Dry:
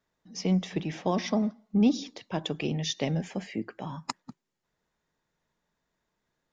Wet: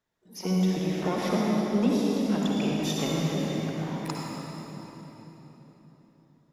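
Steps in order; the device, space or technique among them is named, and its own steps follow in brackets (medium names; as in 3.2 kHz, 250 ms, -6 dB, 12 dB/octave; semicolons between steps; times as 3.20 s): shimmer-style reverb (harmony voices +12 st -9 dB; reverberation RT60 4.1 s, pre-delay 50 ms, DRR -4 dB); trim -4 dB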